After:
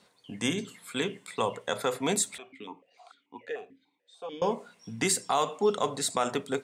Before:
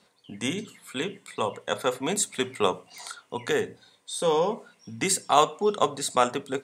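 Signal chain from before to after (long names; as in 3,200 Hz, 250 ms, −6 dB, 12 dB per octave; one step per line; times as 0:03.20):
brickwall limiter −15 dBFS, peak gain reduction 9.5 dB
0:02.38–0:04.42: formant filter that steps through the vowels 6.8 Hz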